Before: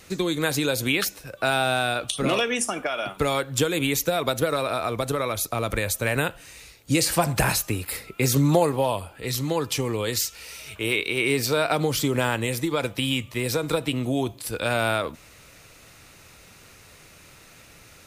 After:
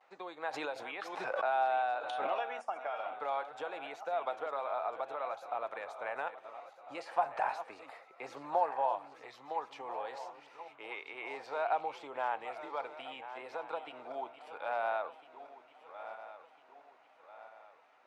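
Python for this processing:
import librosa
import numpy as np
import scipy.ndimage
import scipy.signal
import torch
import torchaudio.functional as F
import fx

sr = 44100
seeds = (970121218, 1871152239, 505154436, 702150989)

y = fx.reverse_delay_fb(x, sr, ms=673, feedback_pct=64, wet_db=-12)
y = fx.vibrato(y, sr, rate_hz=0.61, depth_cents=41.0)
y = fx.ladder_bandpass(y, sr, hz=890.0, resonance_pct=60)
y = fx.pre_swell(y, sr, db_per_s=34.0, at=(0.52, 2.26), fade=0.02)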